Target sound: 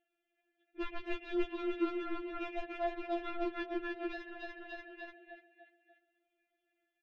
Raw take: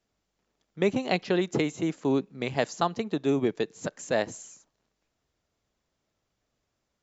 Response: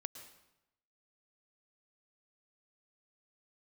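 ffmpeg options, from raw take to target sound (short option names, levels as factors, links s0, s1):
-filter_complex "[0:a]aecho=1:1:293|586|879|1172|1465|1758:0.596|0.28|0.132|0.0618|0.0291|0.0137,asplit=2[s0][s1];[1:a]atrim=start_sample=2205,highshelf=f=4300:g=-8.5[s2];[s1][s2]afir=irnorm=-1:irlink=0,volume=2.99[s3];[s0][s3]amix=inputs=2:normalize=0,crystalizer=i=6:c=0,asplit=3[s4][s5][s6];[s4]bandpass=f=530:t=q:w=8,volume=1[s7];[s5]bandpass=f=1840:t=q:w=8,volume=0.501[s8];[s6]bandpass=f=2480:t=q:w=8,volume=0.355[s9];[s7][s8][s9]amix=inputs=3:normalize=0,acompressor=threshold=0.0282:ratio=8,aresample=8000,asoftclip=type=hard:threshold=0.0178,aresample=44100,aemphasis=mode=reproduction:type=riaa,aeval=exprs='0.0531*(cos(1*acos(clip(val(0)/0.0531,-1,1)))-cos(1*PI/2))+0.00841*(cos(3*acos(clip(val(0)/0.0531,-1,1)))-cos(3*PI/2))':c=same,afftfilt=real='re*4*eq(mod(b,16),0)':imag='im*4*eq(mod(b,16),0)':win_size=2048:overlap=0.75,volume=2.24"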